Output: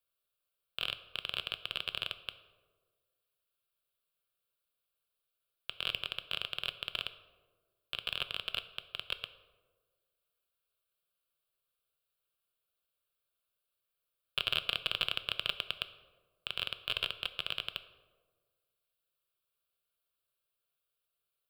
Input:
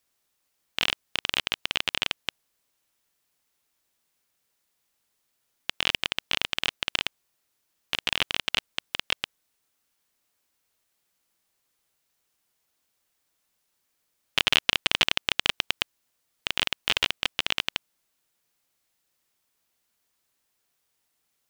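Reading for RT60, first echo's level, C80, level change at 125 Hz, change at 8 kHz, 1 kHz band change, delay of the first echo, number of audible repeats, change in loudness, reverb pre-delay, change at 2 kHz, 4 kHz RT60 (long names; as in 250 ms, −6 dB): 1.5 s, no echo audible, 15.5 dB, −8.0 dB, −19.0 dB, −11.0 dB, no echo audible, no echo audible, −9.5 dB, 5 ms, −11.0 dB, 0.70 s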